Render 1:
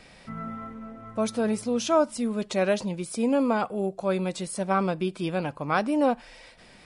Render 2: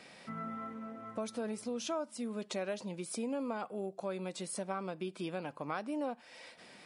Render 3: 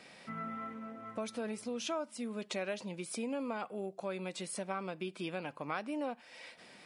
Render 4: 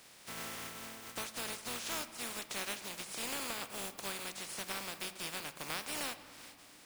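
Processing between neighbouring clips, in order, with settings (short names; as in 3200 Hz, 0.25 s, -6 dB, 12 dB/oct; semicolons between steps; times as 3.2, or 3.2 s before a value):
HPF 190 Hz 12 dB/oct; compressor 3:1, threshold -35 dBFS, peak gain reduction 14 dB; gain -2.5 dB
dynamic EQ 2400 Hz, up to +6 dB, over -57 dBFS, Q 1.2; gain -1 dB
spectral contrast lowered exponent 0.23; on a send at -11 dB: reverb RT60 2.4 s, pre-delay 4 ms; on the sum: gain -2 dB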